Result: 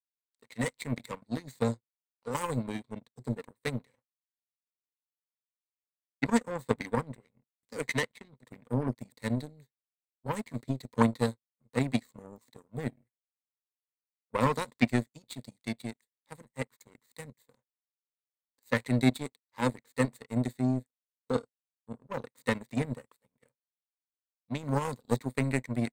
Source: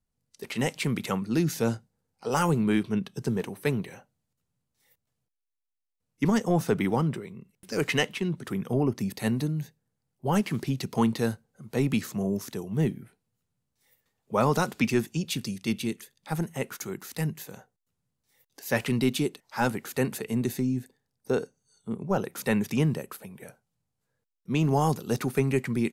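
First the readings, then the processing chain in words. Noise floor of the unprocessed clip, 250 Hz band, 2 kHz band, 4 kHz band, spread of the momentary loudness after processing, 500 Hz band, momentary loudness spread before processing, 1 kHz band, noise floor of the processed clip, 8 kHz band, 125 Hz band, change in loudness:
-82 dBFS, -5.0 dB, -3.5 dB, -7.5 dB, 17 LU, -5.5 dB, 12 LU, -4.5 dB, under -85 dBFS, -7.5 dB, -5.5 dB, -4.5 dB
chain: ripple EQ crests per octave 1, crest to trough 17 dB; power-law curve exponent 2

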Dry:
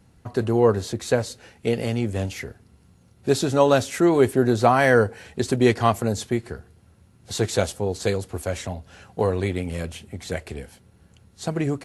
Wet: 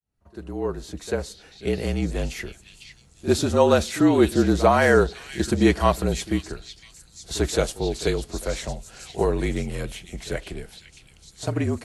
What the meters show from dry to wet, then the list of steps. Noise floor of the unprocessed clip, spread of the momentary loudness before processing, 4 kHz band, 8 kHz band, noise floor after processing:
-56 dBFS, 16 LU, +1.0 dB, +0.5 dB, -54 dBFS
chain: opening faded in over 2.05 s; pre-echo 44 ms -16 dB; frequency shift -41 Hz; on a send: delay with a stepping band-pass 0.503 s, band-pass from 3500 Hz, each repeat 0.7 oct, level -5 dB

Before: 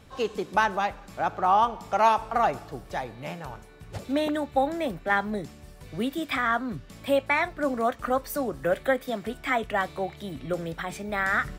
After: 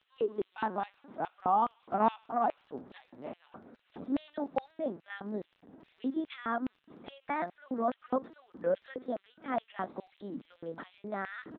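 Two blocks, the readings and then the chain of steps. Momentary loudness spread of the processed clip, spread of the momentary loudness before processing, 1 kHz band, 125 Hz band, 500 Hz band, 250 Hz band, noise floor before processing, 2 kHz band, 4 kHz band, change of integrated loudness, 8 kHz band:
17 LU, 14 LU, -8.0 dB, -12.5 dB, -8.0 dB, -6.0 dB, -48 dBFS, -16.0 dB, -16.0 dB, -8.0 dB, under -35 dB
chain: bell 2400 Hz -11.5 dB 0.91 oct; bands offset in time highs, lows 50 ms, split 160 Hz; LPC vocoder at 8 kHz pitch kept; LFO high-pass square 2.4 Hz 240–2800 Hz; crackle 21/s -41 dBFS; air absorption 320 m; gain -4.5 dB

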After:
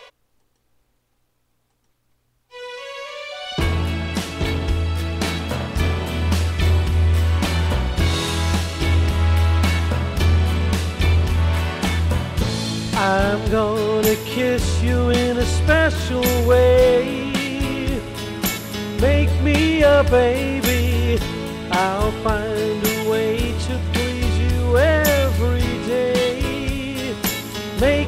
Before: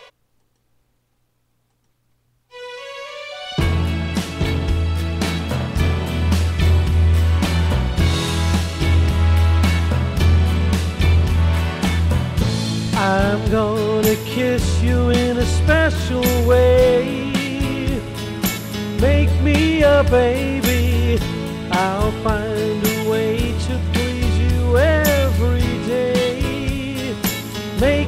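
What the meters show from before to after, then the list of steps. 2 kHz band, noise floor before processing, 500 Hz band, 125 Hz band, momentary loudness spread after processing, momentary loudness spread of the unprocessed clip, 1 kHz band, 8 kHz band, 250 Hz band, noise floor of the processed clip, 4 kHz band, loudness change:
0.0 dB, -64 dBFS, -0.5 dB, -2.5 dB, 9 LU, 8 LU, 0.0 dB, 0.0 dB, -2.5 dB, -66 dBFS, 0.0 dB, -1.5 dB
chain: bell 140 Hz -6 dB 1.1 oct

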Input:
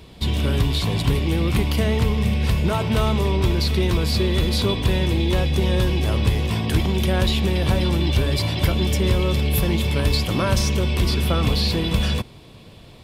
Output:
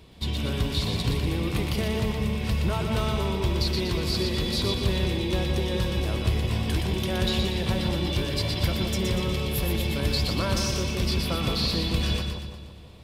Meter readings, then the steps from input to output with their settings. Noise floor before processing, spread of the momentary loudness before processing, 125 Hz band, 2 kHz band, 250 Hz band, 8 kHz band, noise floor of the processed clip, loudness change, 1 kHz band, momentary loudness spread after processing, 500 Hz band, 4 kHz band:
-44 dBFS, 1 LU, -6.5 dB, -4.5 dB, -5.5 dB, -3.5 dB, -40 dBFS, -5.5 dB, -5.5 dB, 2 LU, -5.0 dB, -3.0 dB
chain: dynamic EQ 4900 Hz, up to +4 dB, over -36 dBFS, Q 1.2; on a send: split-band echo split 1100 Hz, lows 0.168 s, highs 0.12 s, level -4.5 dB; on the sum: gain -7 dB

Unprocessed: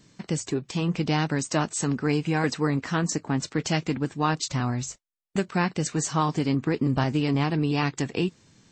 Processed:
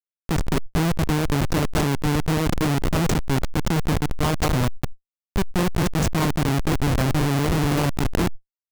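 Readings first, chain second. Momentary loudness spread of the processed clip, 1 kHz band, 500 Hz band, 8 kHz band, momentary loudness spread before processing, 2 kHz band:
5 LU, +2.0 dB, +3.0 dB, 0.0 dB, 5 LU, +2.5 dB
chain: echo 0.208 s -7 dB; Schmitt trigger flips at -22 dBFS; sustainer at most 30 dB/s; gain +6 dB

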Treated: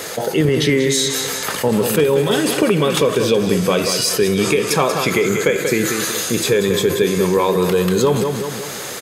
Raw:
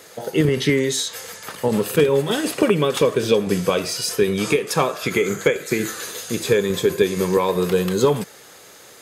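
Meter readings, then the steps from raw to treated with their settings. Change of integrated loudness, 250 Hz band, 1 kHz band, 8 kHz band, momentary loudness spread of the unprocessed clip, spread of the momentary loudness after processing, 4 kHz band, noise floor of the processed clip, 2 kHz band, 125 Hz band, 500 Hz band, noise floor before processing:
+3.5 dB, +4.0 dB, +4.0 dB, +7.0 dB, 8 LU, 4 LU, +5.5 dB, -28 dBFS, +4.0 dB, +4.0 dB, +3.0 dB, -45 dBFS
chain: feedback echo 0.186 s, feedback 32%, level -10 dB; fast leveller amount 50%

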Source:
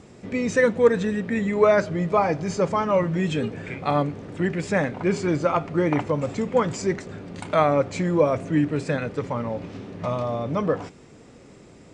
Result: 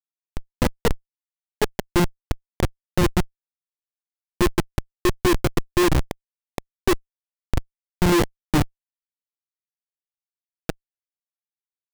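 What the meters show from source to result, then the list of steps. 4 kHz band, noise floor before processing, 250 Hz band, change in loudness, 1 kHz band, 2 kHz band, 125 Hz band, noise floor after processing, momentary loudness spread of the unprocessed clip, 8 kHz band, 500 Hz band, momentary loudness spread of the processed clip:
+7.0 dB, -48 dBFS, -1.0 dB, -1.0 dB, -4.5 dB, -2.0 dB, 0.0 dB, under -85 dBFS, 10 LU, +5.5 dB, -6.0 dB, 17 LU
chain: added harmonics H 2 -36 dB, 5 -11 dB, 6 -13 dB, 7 -32 dB, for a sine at -5.5 dBFS; small resonant body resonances 350/2000/2800 Hz, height 16 dB, ringing for 90 ms; Schmitt trigger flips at -5.5 dBFS; gain -3 dB

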